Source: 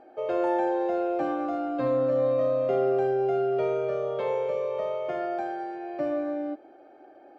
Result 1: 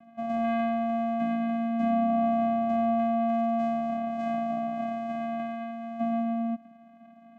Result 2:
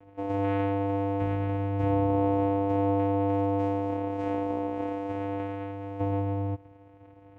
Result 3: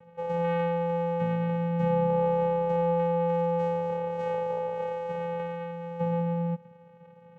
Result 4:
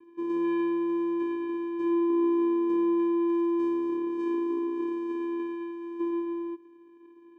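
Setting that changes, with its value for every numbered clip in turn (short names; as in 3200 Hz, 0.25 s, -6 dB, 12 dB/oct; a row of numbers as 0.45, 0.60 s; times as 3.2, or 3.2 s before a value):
vocoder, frequency: 230, 99, 170, 340 Hz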